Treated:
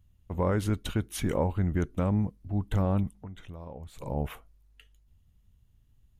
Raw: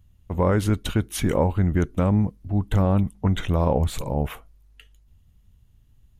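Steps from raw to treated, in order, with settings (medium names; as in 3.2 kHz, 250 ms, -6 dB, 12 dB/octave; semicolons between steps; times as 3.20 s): 3.11–4.02 s: compression 2:1, threshold -46 dBFS, peak gain reduction 16 dB; trim -6.5 dB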